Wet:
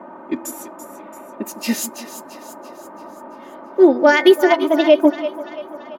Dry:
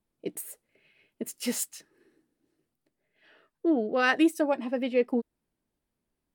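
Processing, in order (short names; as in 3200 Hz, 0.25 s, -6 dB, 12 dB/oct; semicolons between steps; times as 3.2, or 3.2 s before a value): speed glide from 80% -> 132%; bell 8600 Hz -13 dB 0.21 oct; on a send: split-band echo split 370 Hz, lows 0.158 s, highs 0.337 s, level -11.5 dB; on the sum: band noise 160–1100 Hz -46 dBFS; low shelf 88 Hz -6.5 dB; comb 3.3 ms, depth 82%; de-hum 165.5 Hz, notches 15; maximiser +12.5 dB; upward expander 1.5:1, over -18 dBFS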